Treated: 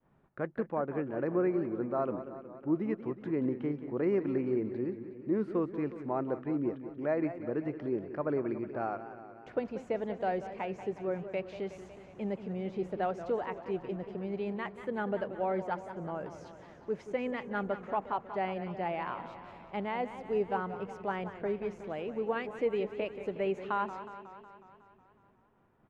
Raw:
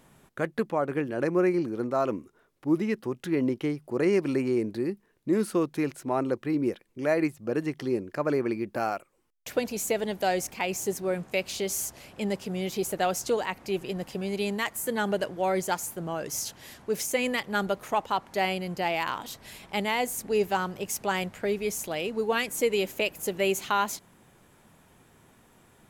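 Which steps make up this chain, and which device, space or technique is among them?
hearing-loss simulation (LPF 1500 Hz 12 dB/oct; expander -54 dBFS); LPF 11000 Hz; echo 0.209 s -23.5 dB; warbling echo 0.183 s, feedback 65%, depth 126 cents, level -12 dB; gain -5.5 dB

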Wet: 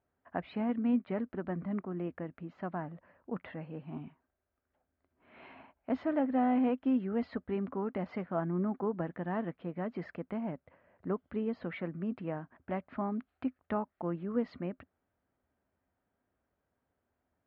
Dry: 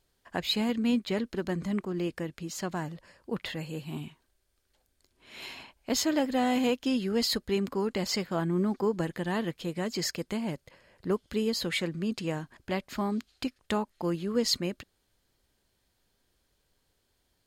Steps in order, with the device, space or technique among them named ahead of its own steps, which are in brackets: bass cabinet (speaker cabinet 62–2200 Hz, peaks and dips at 81 Hz +7 dB, 180 Hz +4 dB, 260 Hz +8 dB, 660 Hz +5 dB, 1300 Hz +5 dB); bell 750 Hz +4.5 dB 1.2 oct; gain -9 dB

